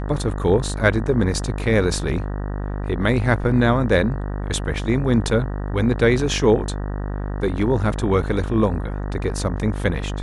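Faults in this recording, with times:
mains buzz 50 Hz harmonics 38 −26 dBFS

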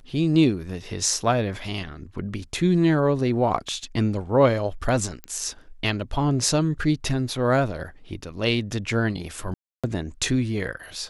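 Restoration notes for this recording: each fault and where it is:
0:05.24: click −20 dBFS
0:09.54–0:09.84: drop-out 296 ms

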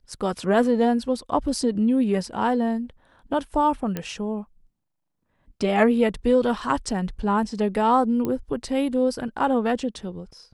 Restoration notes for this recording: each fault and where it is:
0:03.97: click −14 dBFS
0:08.25: click −15 dBFS

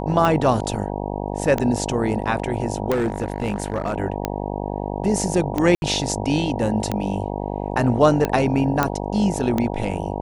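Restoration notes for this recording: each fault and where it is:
mains buzz 50 Hz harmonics 19 −27 dBFS
scratch tick 45 rpm −8 dBFS
0:02.90–0:03.94: clipping −17.5 dBFS
0:05.75–0:05.82: drop-out 71 ms
0:08.83: click −5 dBFS

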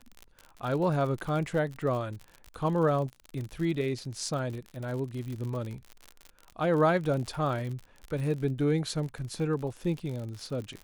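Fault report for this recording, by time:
surface crackle 55 per second −35 dBFS

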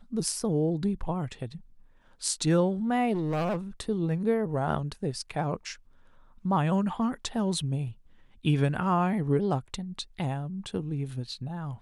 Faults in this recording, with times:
0:03.13–0:03.57: clipping −25.5 dBFS

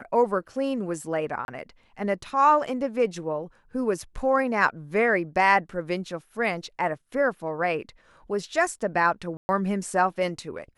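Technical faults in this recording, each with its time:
0:01.45–0:01.48: drop-out 31 ms
0:09.37–0:09.49: drop-out 120 ms

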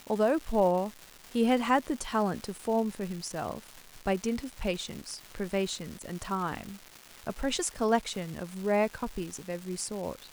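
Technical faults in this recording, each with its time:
surface crackle 580 per second −37 dBFS

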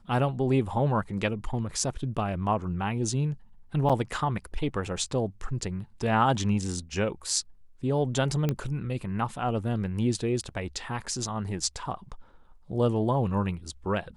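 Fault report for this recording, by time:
0:03.89–0:03.90: drop-out 6.3 ms
0:08.49: click −14 dBFS

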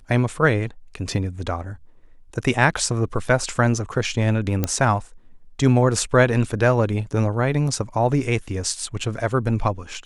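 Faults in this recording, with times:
0:04.64: click −7 dBFS

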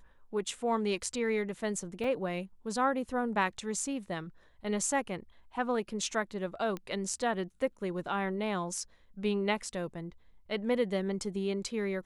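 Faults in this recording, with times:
0:02.04: drop-out 3.3 ms
0:06.77: click −24 dBFS

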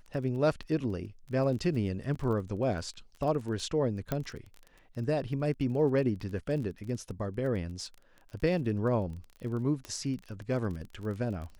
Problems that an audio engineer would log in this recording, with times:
surface crackle 22 per second −38 dBFS
0:02.15–0:02.16: drop-out 5.1 ms
0:04.12: click −17 dBFS
0:09.85: click −25 dBFS

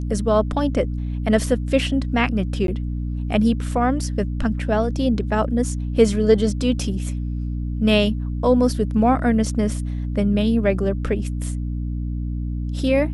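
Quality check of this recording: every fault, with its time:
mains hum 60 Hz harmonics 5 −25 dBFS
0:02.67–0:02.68: drop-out 12 ms

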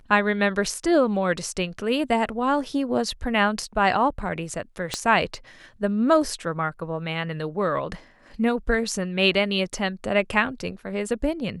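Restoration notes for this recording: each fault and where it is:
0:04.94: click −11 dBFS

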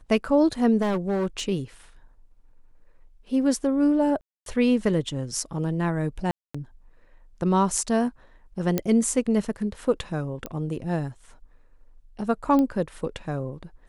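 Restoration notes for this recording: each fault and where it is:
0:00.81–0:01.41: clipping −21.5 dBFS
0:04.21–0:04.46: drop-out 252 ms
0:06.31–0:06.54: drop-out 235 ms
0:08.78: click −9 dBFS
0:10.46: click −17 dBFS
0:12.59: click −14 dBFS

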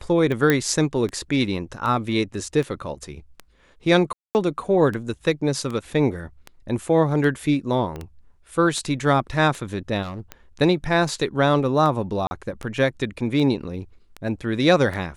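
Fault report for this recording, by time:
scratch tick 78 rpm −18 dBFS
0:00.50: click −5 dBFS
0:04.13–0:04.35: drop-out 219 ms
0:07.96: click −20 dBFS
0:10.02–0:10.21: clipping −28 dBFS
0:12.27–0:12.31: drop-out 40 ms

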